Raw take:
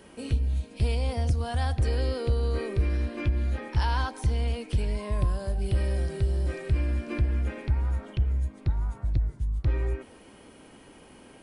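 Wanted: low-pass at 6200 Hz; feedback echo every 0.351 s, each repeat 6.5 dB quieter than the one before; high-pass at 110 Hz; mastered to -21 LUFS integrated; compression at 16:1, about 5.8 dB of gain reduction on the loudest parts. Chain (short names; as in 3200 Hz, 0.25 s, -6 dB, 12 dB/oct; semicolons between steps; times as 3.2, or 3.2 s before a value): HPF 110 Hz; LPF 6200 Hz; compressor 16:1, threshold -31 dBFS; feedback echo 0.351 s, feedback 47%, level -6.5 dB; gain +15.5 dB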